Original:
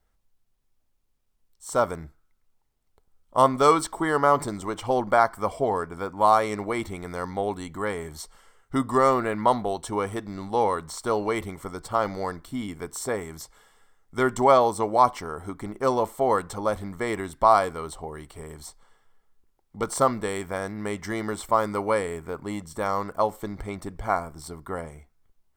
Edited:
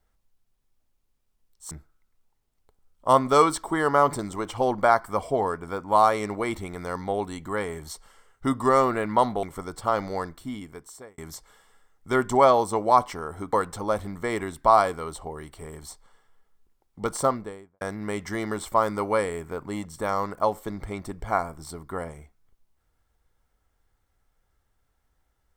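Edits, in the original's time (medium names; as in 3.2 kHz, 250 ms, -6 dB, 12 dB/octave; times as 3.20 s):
1.71–2.00 s: delete
9.72–11.50 s: delete
12.30–13.25 s: fade out
15.60–16.30 s: delete
19.86–20.58 s: studio fade out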